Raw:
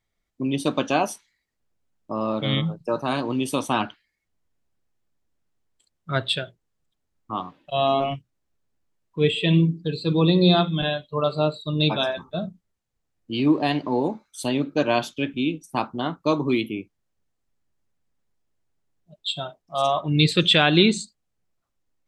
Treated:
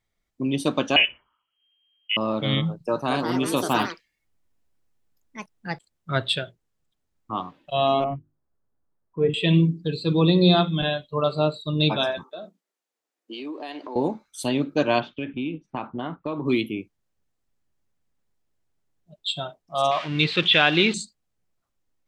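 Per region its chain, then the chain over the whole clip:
0.96–2.17 bell 300 Hz +10.5 dB 1 oct + inverted band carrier 3200 Hz
2.82–6.26 high shelf 10000 Hz +3 dB + echoes that change speed 0.236 s, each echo +4 st, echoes 2, each echo -6 dB
8.04–9.34 LPF 1500 Hz 24 dB/oct + notches 50/100/150/200/250/300/350 Hz
12.23–13.96 HPF 310 Hz 24 dB/oct + compressor 4:1, threshold -33 dBFS
15–16.46 LPF 3000 Hz 24 dB/oct + compressor 4:1, threshold -25 dBFS
19.91–20.94 switching spikes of -14.5 dBFS + LPF 3000 Hz 24 dB/oct + tilt +2.5 dB/oct
whole clip: dry

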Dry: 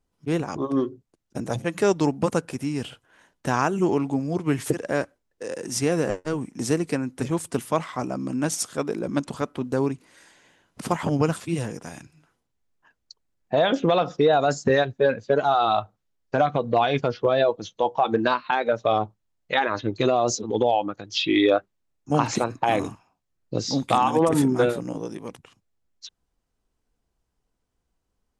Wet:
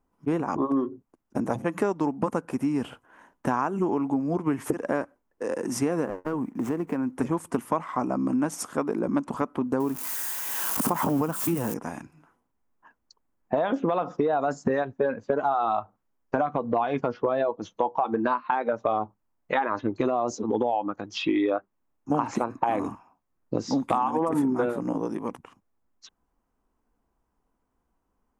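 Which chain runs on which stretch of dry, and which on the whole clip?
6.05–7.13 median filter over 9 samples + compressor 2.5:1, threshold -29 dBFS
9.8–11.74 switching spikes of -21.5 dBFS + bell 2100 Hz -4 dB 0.54 oct + backwards sustainer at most 24 dB/s
whole clip: graphic EQ 125/250/1000/4000/8000 Hz -4/+7/+9/-10/-4 dB; compressor 5:1, threshold -22 dBFS

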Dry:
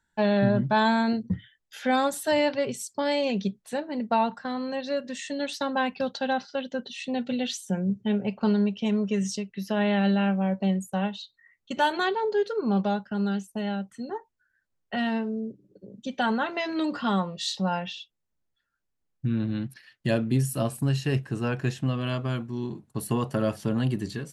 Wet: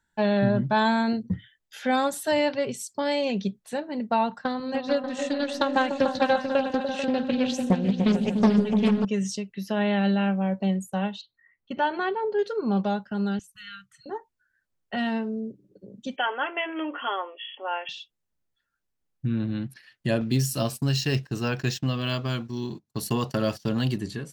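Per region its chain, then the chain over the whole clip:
4.41–9.05 transient shaper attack +8 dB, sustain -4 dB + repeats that get brighter 0.147 s, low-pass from 200 Hz, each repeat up 2 oct, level -3 dB + Doppler distortion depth 0.4 ms
11.21–12.39 air absorption 270 m + notch 3700 Hz, Q 9
13.39–14.06 brick-wall FIR band-stop 180–1100 Hz + bell 220 Hz -10.5 dB 1.1 oct + three-band expander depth 40%
16.16–17.89 brick-wall FIR band-pass 260–3400 Hz + tilt +2.5 dB/oct
20.21–23.98 gate -41 dBFS, range -19 dB + bell 5200 Hz +14 dB 1.4 oct + decimation joined by straight lines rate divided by 2×
whole clip: dry

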